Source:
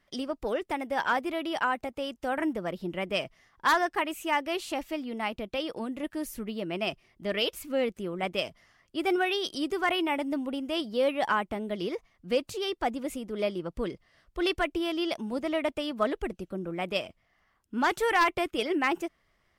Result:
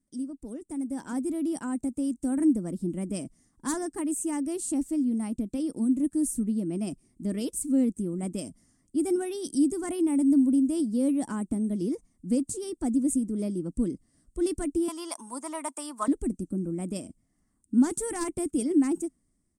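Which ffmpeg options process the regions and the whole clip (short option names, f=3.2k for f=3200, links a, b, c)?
-filter_complex "[0:a]asettb=1/sr,asplit=3[a][b][c];[a]atrim=end=14.884[d];[b]atrim=start=14.88:end=16.08,asetpts=PTS-STARTPTS,afade=t=in:d=0.004:c=qsin,afade=t=out:st=1.196:d=0.004:c=qsin,highpass=f=1k:t=q:w=5.2,acontrast=31[e];[c]atrim=start=16.076[f];[d][e]acrossfade=d=0.004:c1=hsin:c2=qsin[g];[g][f]acrossfade=d=0.004:c1=qsin:c2=hsin,firequalizer=gain_entry='entry(130,0);entry(270,10);entry(390,-6);entry(590,-14);entry(1200,-18);entry(2900,-23);entry(8600,15);entry(13000,-9)':delay=0.05:min_phase=1,dynaudnorm=f=390:g=5:m=10dB,volume=-7dB"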